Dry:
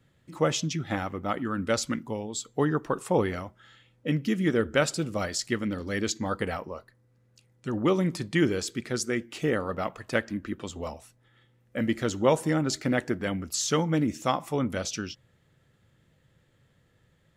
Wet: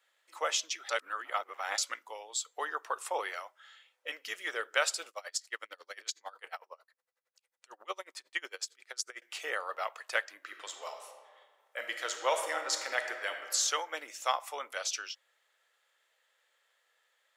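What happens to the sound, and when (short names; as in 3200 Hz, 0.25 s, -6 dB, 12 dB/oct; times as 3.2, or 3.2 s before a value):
0.89–1.78 reverse
5.09–9.22 dB-linear tremolo 11 Hz, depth 29 dB
10.36–13.52 reverb throw, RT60 1.7 s, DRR 5 dB
whole clip: Bessel high-pass 920 Hz, order 6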